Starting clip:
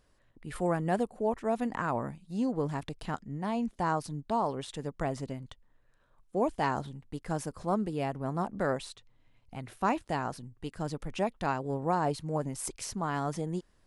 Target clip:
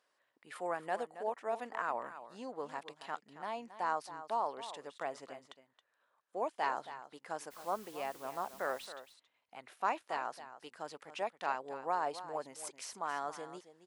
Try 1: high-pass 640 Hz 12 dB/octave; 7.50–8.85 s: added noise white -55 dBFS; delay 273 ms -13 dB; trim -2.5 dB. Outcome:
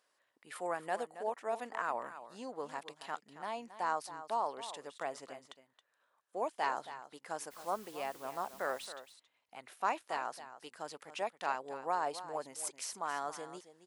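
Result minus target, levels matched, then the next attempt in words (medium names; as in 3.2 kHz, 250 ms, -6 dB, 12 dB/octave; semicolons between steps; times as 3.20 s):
8 kHz band +4.5 dB
high-pass 640 Hz 12 dB/octave; treble shelf 6.5 kHz -8.5 dB; 7.50–8.85 s: added noise white -55 dBFS; delay 273 ms -13 dB; trim -2.5 dB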